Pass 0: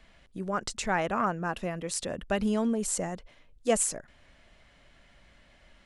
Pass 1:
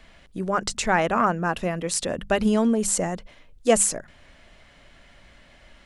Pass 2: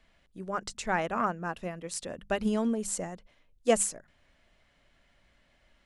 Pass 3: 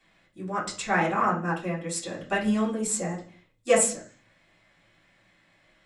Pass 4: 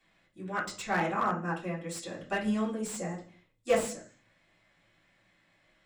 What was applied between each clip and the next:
hum notches 50/100/150/200 Hz; trim +7 dB
upward expansion 1.5:1, over -32 dBFS; trim -5 dB
reverberation, pre-delay 3 ms, DRR -7.5 dB
time-frequency box 0.46–0.66 s, 1.4–4.1 kHz +9 dB; slew-rate limiter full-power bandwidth 150 Hz; trim -5 dB

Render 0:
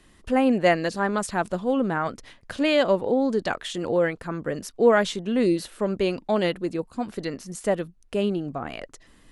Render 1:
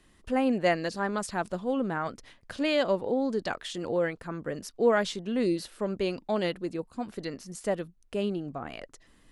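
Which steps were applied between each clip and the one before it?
dynamic bell 4.9 kHz, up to +4 dB, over -50 dBFS, Q 2.7; trim -5.5 dB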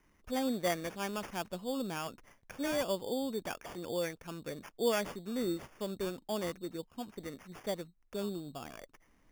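sample-and-hold 11×; trim -7.5 dB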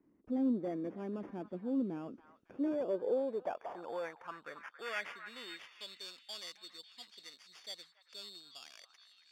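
Chebyshev shaper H 5 -14 dB, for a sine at -20 dBFS; band-pass sweep 290 Hz -> 4.3 kHz, 2.41–6.04 s; repeats whose band climbs or falls 277 ms, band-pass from 1.3 kHz, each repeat 0.7 oct, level -8 dB; trim +1 dB

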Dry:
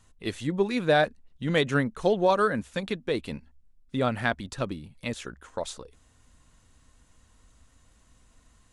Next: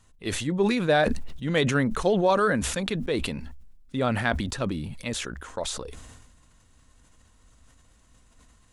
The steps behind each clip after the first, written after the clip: decay stretcher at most 37 dB/s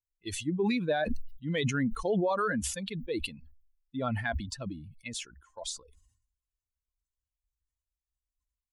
expander on every frequency bin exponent 2; peak limiter -20.5 dBFS, peak gain reduction 7.5 dB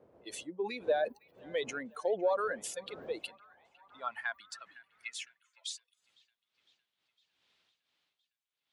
wind noise 81 Hz -32 dBFS; feedback echo behind a band-pass 507 ms, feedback 65%, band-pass 1.5 kHz, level -21.5 dB; high-pass sweep 510 Hz -> 3.5 kHz, 2.99–5.99 s; trim -6.5 dB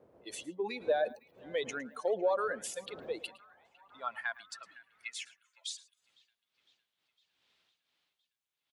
delay 110 ms -19.5 dB

